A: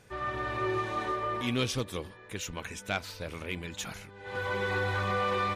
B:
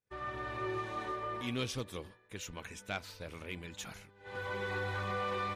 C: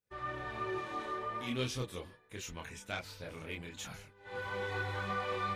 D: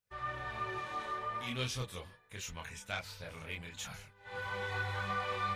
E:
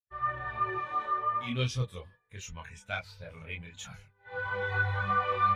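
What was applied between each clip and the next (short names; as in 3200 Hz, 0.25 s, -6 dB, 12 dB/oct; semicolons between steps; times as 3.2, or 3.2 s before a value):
expander -43 dBFS; gain -6.5 dB
chorus voices 4, 0.39 Hz, delay 27 ms, depth 4.6 ms; gain +3 dB
bell 320 Hz -10.5 dB 1.1 oct; gain +1.5 dB
spectral expander 1.5:1; gain +5.5 dB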